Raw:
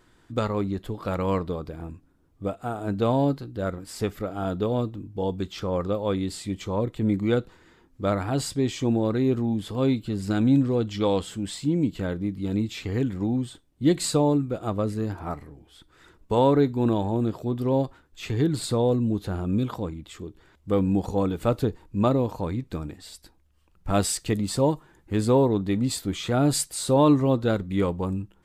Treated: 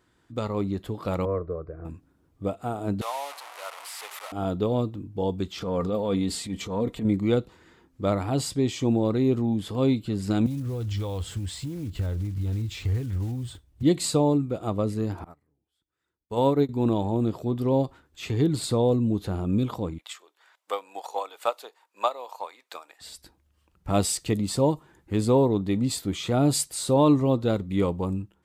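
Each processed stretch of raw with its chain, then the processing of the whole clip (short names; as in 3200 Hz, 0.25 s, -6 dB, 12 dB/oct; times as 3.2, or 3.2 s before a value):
1.25–1.85 LPF 1200 Hz + fixed phaser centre 860 Hz, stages 6
3.01–4.32 delta modulation 64 kbps, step -25.5 dBFS + HPF 810 Hz 24 dB/oct + bell 6200 Hz -9.5 dB 2 oct
5.6–7.05 comb 4.3 ms, depth 46% + transient shaper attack -9 dB, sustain +4 dB
10.46–13.83 block floating point 5-bit + compressor 2.5:1, threshold -35 dBFS + resonant low shelf 130 Hz +13 dB, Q 1.5
15.24–16.69 high shelf 11000 Hz +11 dB + upward expander 2.5:1, over -36 dBFS
19.98–23.01 HPF 700 Hz 24 dB/oct + transient shaper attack +7 dB, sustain -2 dB
whole clip: HPF 45 Hz; dynamic EQ 1600 Hz, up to -8 dB, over -51 dBFS, Q 3.3; AGC gain up to 7 dB; gain -6.5 dB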